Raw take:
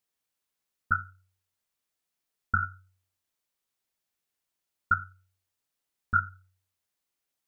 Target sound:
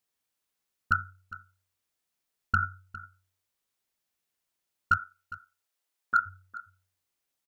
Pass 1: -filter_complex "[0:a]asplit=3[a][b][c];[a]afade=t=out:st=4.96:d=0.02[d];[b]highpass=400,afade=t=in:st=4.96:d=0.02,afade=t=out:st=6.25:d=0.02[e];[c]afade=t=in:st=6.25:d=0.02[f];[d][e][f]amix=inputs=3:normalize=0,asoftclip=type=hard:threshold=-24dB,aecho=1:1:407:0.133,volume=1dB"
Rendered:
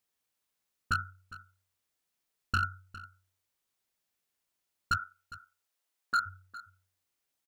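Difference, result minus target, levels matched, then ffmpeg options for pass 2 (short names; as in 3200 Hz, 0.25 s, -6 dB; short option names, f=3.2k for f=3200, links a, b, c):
hard clip: distortion +18 dB
-filter_complex "[0:a]asplit=3[a][b][c];[a]afade=t=out:st=4.96:d=0.02[d];[b]highpass=400,afade=t=in:st=4.96:d=0.02,afade=t=out:st=6.25:d=0.02[e];[c]afade=t=in:st=6.25:d=0.02[f];[d][e][f]amix=inputs=3:normalize=0,asoftclip=type=hard:threshold=-14dB,aecho=1:1:407:0.133,volume=1dB"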